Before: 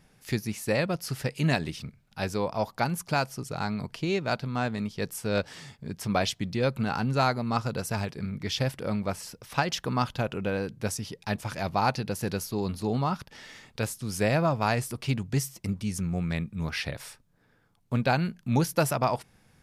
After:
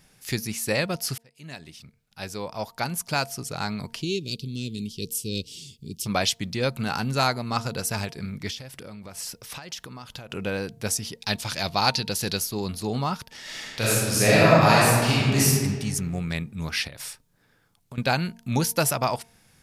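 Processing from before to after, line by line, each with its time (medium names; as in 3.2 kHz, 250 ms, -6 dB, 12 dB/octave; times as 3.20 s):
1.18–3.40 s: fade in
4.02–6.06 s: elliptic band-stop 400–2900 Hz
6.83–7.27 s: treble shelf 9.8 kHz +6.5 dB
8.50–10.30 s: compression 16:1, threshold -37 dBFS
11.20–12.40 s: peaking EQ 4 kHz +8.5 dB 1 oct
13.41–15.48 s: reverb throw, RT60 1.8 s, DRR -7.5 dB
16.87–17.98 s: compression, threshold -38 dBFS
whole clip: treble shelf 2.5 kHz +9.5 dB; de-hum 229.4 Hz, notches 4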